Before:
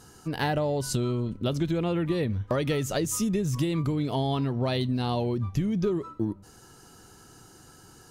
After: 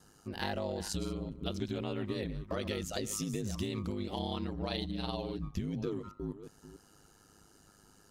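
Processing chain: chunks repeated in reverse 324 ms, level -13.5 dB; ring modulator 51 Hz; dynamic bell 4.1 kHz, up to +6 dB, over -52 dBFS, Q 0.87; trim -7 dB

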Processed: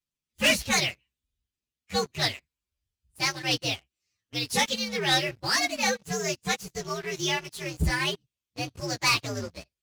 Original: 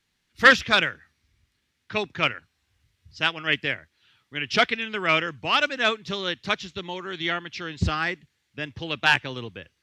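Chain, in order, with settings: frequency axis rescaled in octaves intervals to 122%; waveshaping leveller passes 3; trim -8 dB

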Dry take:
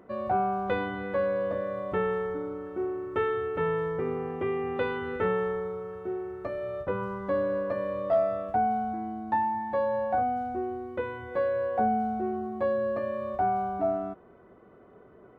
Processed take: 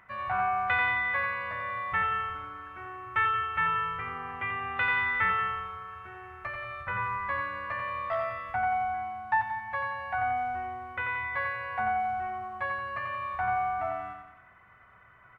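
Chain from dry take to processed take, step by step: FFT filter 120 Hz 0 dB, 230 Hz -16 dB, 420 Hz -22 dB, 900 Hz +2 dB, 2.1 kHz +14 dB, 4.1 kHz +1 dB; feedback delay 89 ms, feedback 48%, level -5.5 dB; trim -1.5 dB

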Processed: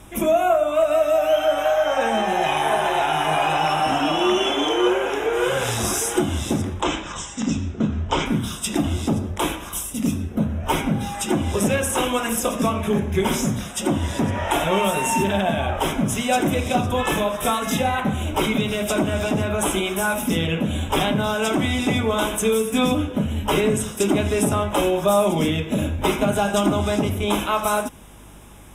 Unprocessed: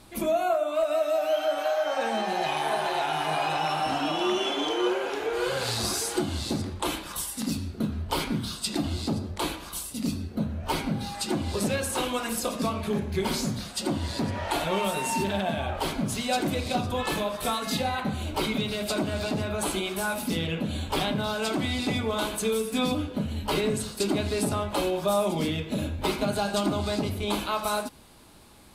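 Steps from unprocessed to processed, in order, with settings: Butterworth band-stop 4.4 kHz, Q 2.5; hum 50 Hz, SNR 27 dB; 6.81–8.26 s: steep low-pass 7.7 kHz 72 dB/octave; trim +7 dB

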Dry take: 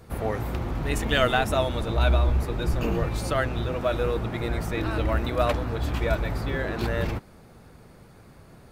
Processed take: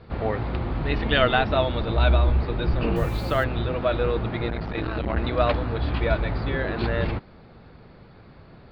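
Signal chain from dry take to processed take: steep low-pass 4.7 kHz 72 dB/octave; 2.96–3.44 s: word length cut 8-bit, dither none; 4.50–5.17 s: transformer saturation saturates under 390 Hz; trim +2 dB

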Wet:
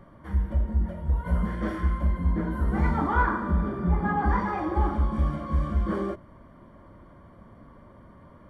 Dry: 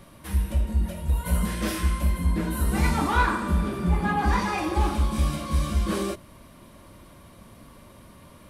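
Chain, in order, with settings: Savitzky-Golay filter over 41 samples; trim -1 dB

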